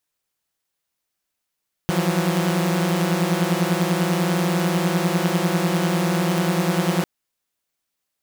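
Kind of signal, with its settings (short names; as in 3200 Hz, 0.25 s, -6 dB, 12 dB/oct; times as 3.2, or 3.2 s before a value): chord E3/F3/F#3 saw, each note -20.5 dBFS 5.15 s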